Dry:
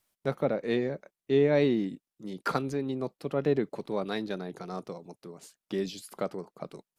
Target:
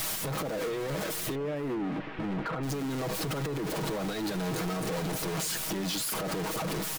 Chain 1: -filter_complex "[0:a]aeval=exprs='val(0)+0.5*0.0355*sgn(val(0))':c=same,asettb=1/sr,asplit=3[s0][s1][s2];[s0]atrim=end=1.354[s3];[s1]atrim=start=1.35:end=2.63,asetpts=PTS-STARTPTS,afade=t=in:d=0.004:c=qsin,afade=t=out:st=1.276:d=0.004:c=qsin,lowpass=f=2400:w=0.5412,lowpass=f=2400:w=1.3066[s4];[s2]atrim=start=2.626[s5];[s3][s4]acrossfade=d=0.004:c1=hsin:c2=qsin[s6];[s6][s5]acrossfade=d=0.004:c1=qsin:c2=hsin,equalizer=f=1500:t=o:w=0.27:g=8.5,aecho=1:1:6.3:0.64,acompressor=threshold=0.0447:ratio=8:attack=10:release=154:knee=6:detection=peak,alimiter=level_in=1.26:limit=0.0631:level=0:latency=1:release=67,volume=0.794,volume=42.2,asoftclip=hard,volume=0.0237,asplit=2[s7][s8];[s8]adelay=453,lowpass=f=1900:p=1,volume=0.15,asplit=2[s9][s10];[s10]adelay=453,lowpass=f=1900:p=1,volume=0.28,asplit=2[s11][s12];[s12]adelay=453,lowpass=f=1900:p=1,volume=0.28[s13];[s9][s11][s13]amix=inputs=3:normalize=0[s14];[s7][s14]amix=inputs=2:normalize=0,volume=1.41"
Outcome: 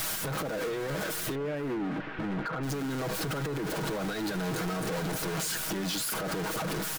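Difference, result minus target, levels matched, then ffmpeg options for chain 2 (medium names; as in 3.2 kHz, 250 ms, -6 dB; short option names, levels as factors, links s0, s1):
2 kHz band +2.5 dB
-filter_complex "[0:a]aeval=exprs='val(0)+0.5*0.0355*sgn(val(0))':c=same,asettb=1/sr,asplit=3[s0][s1][s2];[s0]atrim=end=1.354[s3];[s1]atrim=start=1.35:end=2.63,asetpts=PTS-STARTPTS,afade=t=in:d=0.004:c=qsin,afade=t=out:st=1.276:d=0.004:c=qsin,lowpass=f=2400:w=0.5412,lowpass=f=2400:w=1.3066[s4];[s2]atrim=start=2.626[s5];[s3][s4]acrossfade=d=0.004:c1=hsin:c2=qsin[s6];[s6][s5]acrossfade=d=0.004:c1=qsin:c2=hsin,aecho=1:1:6.3:0.64,acompressor=threshold=0.0447:ratio=8:attack=10:release=154:knee=6:detection=peak,alimiter=level_in=1.26:limit=0.0631:level=0:latency=1:release=67,volume=0.794,volume=42.2,asoftclip=hard,volume=0.0237,asplit=2[s7][s8];[s8]adelay=453,lowpass=f=1900:p=1,volume=0.15,asplit=2[s9][s10];[s10]adelay=453,lowpass=f=1900:p=1,volume=0.28,asplit=2[s11][s12];[s12]adelay=453,lowpass=f=1900:p=1,volume=0.28[s13];[s9][s11][s13]amix=inputs=3:normalize=0[s14];[s7][s14]amix=inputs=2:normalize=0,volume=1.41"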